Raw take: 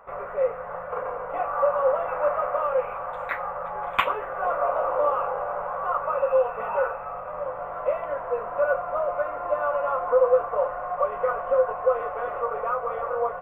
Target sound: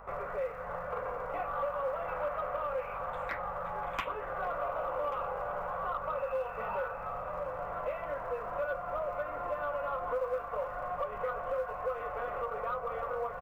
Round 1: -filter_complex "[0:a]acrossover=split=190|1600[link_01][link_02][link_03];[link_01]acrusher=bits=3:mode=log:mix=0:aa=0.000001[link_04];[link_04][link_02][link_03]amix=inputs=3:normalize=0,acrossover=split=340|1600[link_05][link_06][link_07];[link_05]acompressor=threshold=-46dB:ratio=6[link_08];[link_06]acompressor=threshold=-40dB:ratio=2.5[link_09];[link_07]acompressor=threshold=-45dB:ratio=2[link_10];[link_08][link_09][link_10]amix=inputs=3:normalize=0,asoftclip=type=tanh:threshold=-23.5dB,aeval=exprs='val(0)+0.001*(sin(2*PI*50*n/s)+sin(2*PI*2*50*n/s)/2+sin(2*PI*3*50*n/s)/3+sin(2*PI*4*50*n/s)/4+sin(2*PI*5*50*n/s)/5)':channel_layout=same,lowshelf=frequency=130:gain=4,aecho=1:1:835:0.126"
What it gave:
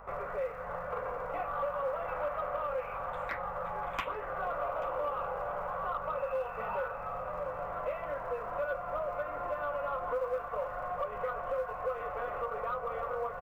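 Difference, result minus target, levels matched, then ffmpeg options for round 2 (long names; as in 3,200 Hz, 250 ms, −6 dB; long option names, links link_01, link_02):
echo 301 ms early
-filter_complex "[0:a]acrossover=split=190|1600[link_01][link_02][link_03];[link_01]acrusher=bits=3:mode=log:mix=0:aa=0.000001[link_04];[link_04][link_02][link_03]amix=inputs=3:normalize=0,acrossover=split=340|1600[link_05][link_06][link_07];[link_05]acompressor=threshold=-46dB:ratio=6[link_08];[link_06]acompressor=threshold=-40dB:ratio=2.5[link_09];[link_07]acompressor=threshold=-45dB:ratio=2[link_10];[link_08][link_09][link_10]amix=inputs=3:normalize=0,asoftclip=type=tanh:threshold=-23.5dB,aeval=exprs='val(0)+0.001*(sin(2*PI*50*n/s)+sin(2*PI*2*50*n/s)/2+sin(2*PI*3*50*n/s)/3+sin(2*PI*4*50*n/s)/4+sin(2*PI*5*50*n/s)/5)':channel_layout=same,lowshelf=frequency=130:gain=4,aecho=1:1:1136:0.126"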